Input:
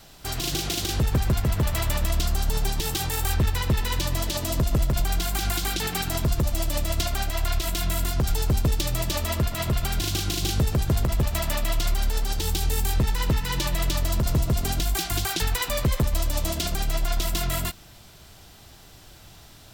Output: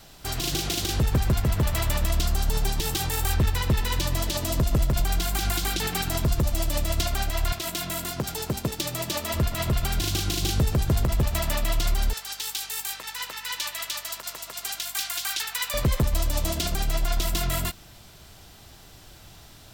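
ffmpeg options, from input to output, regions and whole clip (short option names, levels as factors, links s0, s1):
-filter_complex "[0:a]asettb=1/sr,asplit=3[s0][s1][s2];[s0]atrim=end=7.524[s3];[s1]atrim=start=7.52:end=9.34,asetpts=PTS-STARTPTS,afade=t=in:d=0.004:c=qsin,afade=t=out:st=1.816:d=0.004:c=qsin,highpass=150,aeval=exprs='sgn(val(0))*max(abs(val(0))-0.00266,0)':c=same[s4];[s2]atrim=start=9.336[s5];[s3][s4]acrossfade=d=0.004:c1=hsin:c2=qsin[s6];[s6][s5]acrossfade=d=0.004:c1=qsin:c2=hsin,asettb=1/sr,asplit=3[s7][s8][s9];[s7]atrim=end=12.134[s10];[s8]atrim=start=12.13:end=15.74,asetpts=PTS-STARTPTS,afade=t=in:d=0.004:c=qsin,afade=t=out:st=3.606:d=0.004:c=qsin,highpass=1200,aeval=exprs='val(0)+0.00141*(sin(2*PI*50*n/s)+sin(2*PI*2*50*n/s)/2+sin(2*PI*3*50*n/s)/3+sin(2*PI*4*50*n/s)/4+sin(2*PI*5*50*n/s)/5)':c=same[s11];[s9]atrim=start=15.736[s12];[s10][s11]acrossfade=d=0.004:c1=hsin:c2=qsin[s13];[s13][s12]acrossfade=d=0.004:c1=qsin:c2=hsin"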